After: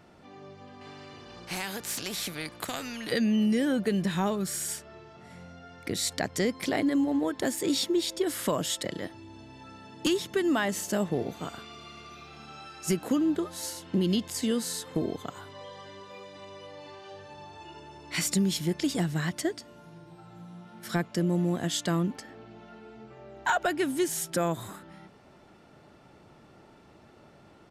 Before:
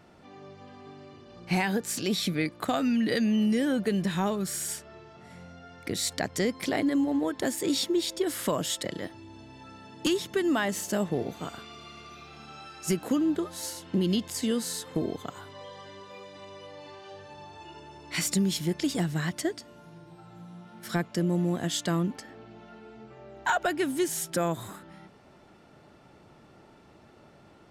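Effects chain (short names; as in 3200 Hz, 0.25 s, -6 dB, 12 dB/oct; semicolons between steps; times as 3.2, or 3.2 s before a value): downsampling 32000 Hz; 0.81–3.12 spectral compressor 2:1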